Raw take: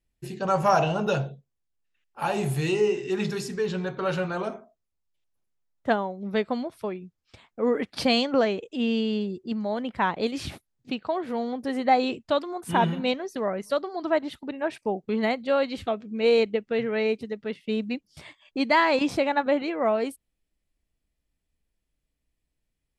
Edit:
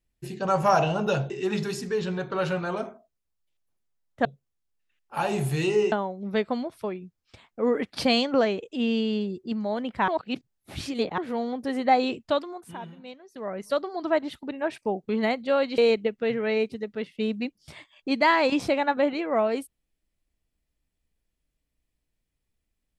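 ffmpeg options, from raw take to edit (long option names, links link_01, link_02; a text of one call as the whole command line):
ffmpeg -i in.wav -filter_complex "[0:a]asplit=9[link_01][link_02][link_03][link_04][link_05][link_06][link_07][link_08][link_09];[link_01]atrim=end=1.302[link_10];[link_02]atrim=start=2.968:end=5.922[link_11];[link_03]atrim=start=1.298:end=2.972[link_12];[link_04]atrim=start=5.918:end=10.082[link_13];[link_05]atrim=start=10.078:end=11.182,asetpts=PTS-STARTPTS,areverse[link_14];[link_06]atrim=start=11.178:end=12.77,asetpts=PTS-STARTPTS,afade=type=out:start_time=1.132:duration=0.46:silence=0.141254[link_15];[link_07]atrim=start=12.77:end=13.27,asetpts=PTS-STARTPTS,volume=-17dB[link_16];[link_08]atrim=start=13.27:end=15.782,asetpts=PTS-STARTPTS,afade=type=in:duration=0.46:silence=0.141254[link_17];[link_09]atrim=start=16.268[link_18];[link_10][link_11]acrossfade=duration=0.004:curve1=hsin:curve2=hsin[link_19];[link_19][link_12]acrossfade=duration=0.004:curve1=hsin:curve2=hsin[link_20];[link_20][link_13]acrossfade=duration=0.004:curve1=hsin:curve2=hsin[link_21];[link_21][link_14]acrossfade=duration=0.004:curve1=hsin:curve2=hsin[link_22];[link_15][link_16][link_17]concat=n=3:v=0:a=1[link_23];[link_22][link_23]acrossfade=duration=0.004:curve1=hsin:curve2=hsin[link_24];[link_24][link_18]acrossfade=duration=0.004:curve1=hsin:curve2=hsin" out.wav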